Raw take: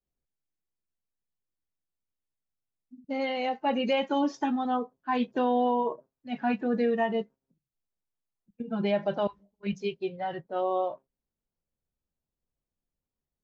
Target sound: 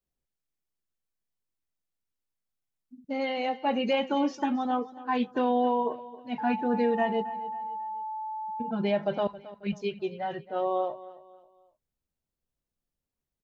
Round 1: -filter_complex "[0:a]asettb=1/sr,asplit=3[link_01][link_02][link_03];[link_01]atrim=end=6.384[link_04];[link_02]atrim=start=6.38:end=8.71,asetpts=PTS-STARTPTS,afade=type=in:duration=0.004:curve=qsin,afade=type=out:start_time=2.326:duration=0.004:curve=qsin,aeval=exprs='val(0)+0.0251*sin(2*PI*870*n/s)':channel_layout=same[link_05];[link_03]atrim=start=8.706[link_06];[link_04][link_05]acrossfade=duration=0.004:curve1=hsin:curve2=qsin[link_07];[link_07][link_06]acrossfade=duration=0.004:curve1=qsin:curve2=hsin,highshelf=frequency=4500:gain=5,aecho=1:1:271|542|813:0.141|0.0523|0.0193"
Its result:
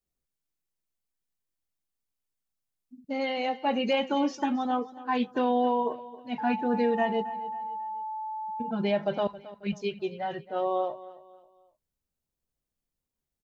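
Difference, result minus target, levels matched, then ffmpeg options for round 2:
8,000 Hz band +3.0 dB
-filter_complex "[0:a]asettb=1/sr,asplit=3[link_01][link_02][link_03];[link_01]atrim=end=6.384[link_04];[link_02]atrim=start=6.38:end=8.71,asetpts=PTS-STARTPTS,afade=type=in:duration=0.004:curve=qsin,afade=type=out:start_time=2.326:duration=0.004:curve=qsin,aeval=exprs='val(0)+0.0251*sin(2*PI*870*n/s)':channel_layout=same[link_05];[link_03]atrim=start=8.706[link_06];[link_04][link_05]acrossfade=duration=0.004:curve1=hsin:curve2=qsin[link_07];[link_07][link_06]acrossfade=duration=0.004:curve1=qsin:curve2=hsin,aecho=1:1:271|542|813:0.141|0.0523|0.0193"

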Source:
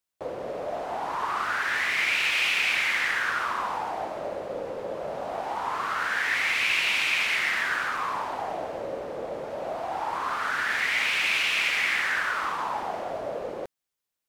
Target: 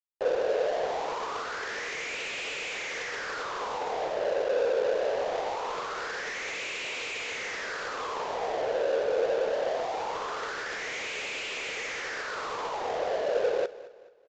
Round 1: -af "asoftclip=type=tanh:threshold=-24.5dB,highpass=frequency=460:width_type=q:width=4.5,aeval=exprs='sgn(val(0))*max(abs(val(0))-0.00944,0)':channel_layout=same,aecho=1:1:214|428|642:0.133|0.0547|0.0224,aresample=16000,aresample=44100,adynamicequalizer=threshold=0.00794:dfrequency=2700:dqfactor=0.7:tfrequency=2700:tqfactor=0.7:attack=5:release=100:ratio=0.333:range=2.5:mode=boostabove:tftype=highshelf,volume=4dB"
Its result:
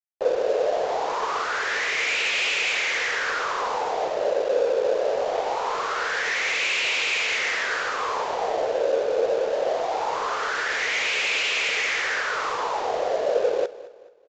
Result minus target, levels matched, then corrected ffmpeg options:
soft clipping: distortion −7 dB
-af "asoftclip=type=tanh:threshold=-34dB,highpass=frequency=460:width_type=q:width=4.5,aeval=exprs='sgn(val(0))*max(abs(val(0))-0.00944,0)':channel_layout=same,aecho=1:1:214|428|642:0.133|0.0547|0.0224,aresample=16000,aresample=44100,adynamicequalizer=threshold=0.00794:dfrequency=2700:dqfactor=0.7:tfrequency=2700:tqfactor=0.7:attack=5:release=100:ratio=0.333:range=2.5:mode=boostabove:tftype=highshelf,volume=4dB"

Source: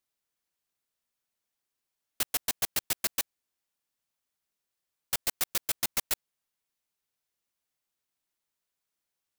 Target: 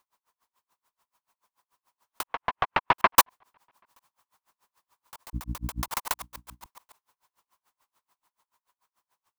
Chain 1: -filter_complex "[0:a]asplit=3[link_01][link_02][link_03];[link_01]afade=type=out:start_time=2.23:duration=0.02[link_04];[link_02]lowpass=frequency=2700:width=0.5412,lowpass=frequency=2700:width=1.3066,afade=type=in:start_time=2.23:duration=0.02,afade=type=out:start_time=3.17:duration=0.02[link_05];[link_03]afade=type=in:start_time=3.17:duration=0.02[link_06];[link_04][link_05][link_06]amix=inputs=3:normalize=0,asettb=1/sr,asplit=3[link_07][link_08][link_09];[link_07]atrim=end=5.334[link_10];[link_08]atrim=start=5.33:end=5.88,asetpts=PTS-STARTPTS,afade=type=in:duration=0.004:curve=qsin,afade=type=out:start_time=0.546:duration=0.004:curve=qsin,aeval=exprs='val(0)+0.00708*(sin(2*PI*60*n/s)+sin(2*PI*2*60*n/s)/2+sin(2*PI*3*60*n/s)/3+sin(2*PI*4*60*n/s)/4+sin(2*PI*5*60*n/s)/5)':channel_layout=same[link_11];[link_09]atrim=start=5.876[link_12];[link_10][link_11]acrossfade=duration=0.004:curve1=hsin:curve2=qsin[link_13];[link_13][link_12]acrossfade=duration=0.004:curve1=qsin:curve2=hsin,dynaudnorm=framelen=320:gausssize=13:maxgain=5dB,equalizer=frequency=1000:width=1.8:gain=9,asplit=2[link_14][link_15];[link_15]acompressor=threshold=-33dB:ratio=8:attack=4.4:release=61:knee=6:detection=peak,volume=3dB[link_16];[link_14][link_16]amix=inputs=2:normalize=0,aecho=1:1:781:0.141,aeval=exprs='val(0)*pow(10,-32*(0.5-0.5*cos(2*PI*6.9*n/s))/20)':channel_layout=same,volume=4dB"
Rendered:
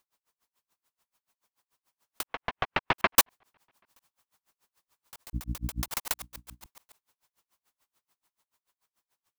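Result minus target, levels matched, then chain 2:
1,000 Hz band −4.5 dB
-filter_complex "[0:a]asplit=3[link_01][link_02][link_03];[link_01]afade=type=out:start_time=2.23:duration=0.02[link_04];[link_02]lowpass=frequency=2700:width=0.5412,lowpass=frequency=2700:width=1.3066,afade=type=in:start_time=2.23:duration=0.02,afade=type=out:start_time=3.17:duration=0.02[link_05];[link_03]afade=type=in:start_time=3.17:duration=0.02[link_06];[link_04][link_05][link_06]amix=inputs=3:normalize=0,asettb=1/sr,asplit=3[link_07][link_08][link_09];[link_07]atrim=end=5.334[link_10];[link_08]atrim=start=5.33:end=5.88,asetpts=PTS-STARTPTS,afade=type=in:duration=0.004:curve=qsin,afade=type=out:start_time=0.546:duration=0.004:curve=qsin,aeval=exprs='val(0)+0.00708*(sin(2*PI*60*n/s)+sin(2*PI*2*60*n/s)/2+sin(2*PI*3*60*n/s)/3+sin(2*PI*4*60*n/s)/4+sin(2*PI*5*60*n/s)/5)':channel_layout=same[link_11];[link_09]atrim=start=5.876[link_12];[link_10][link_11]acrossfade=duration=0.004:curve1=hsin:curve2=qsin[link_13];[link_13][link_12]acrossfade=duration=0.004:curve1=qsin:curve2=hsin,dynaudnorm=framelen=320:gausssize=13:maxgain=5dB,equalizer=frequency=1000:width=1.8:gain=20,asplit=2[link_14][link_15];[link_15]acompressor=threshold=-33dB:ratio=8:attack=4.4:release=61:knee=6:detection=peak,volume=3dB[link_16];[link_14][link_16]amix=inputs=2:normalize=0,aecho=1:1:781:0.141,aeval=exprs='val(0)*pow(10,-32*(0.5-0.5*cos(2*PI*6.9*n/s))/20)':channel_layout=same,volume=4dB"

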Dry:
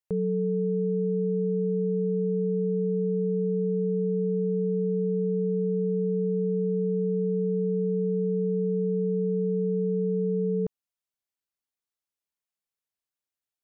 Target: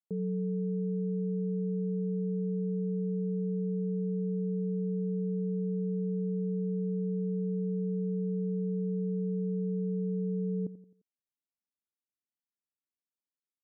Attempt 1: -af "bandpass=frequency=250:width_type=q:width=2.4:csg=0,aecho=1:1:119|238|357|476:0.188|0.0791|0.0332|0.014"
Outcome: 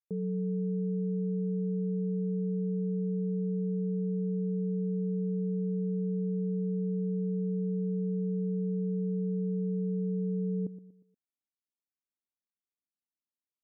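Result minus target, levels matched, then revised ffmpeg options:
echo 32 ms late
-af "bandpass=frequency=250:width_type=q:width=2.4:csg=0,aecho=1:1:87|174|261|348:0.188|0.0791|0.0332|0.014"

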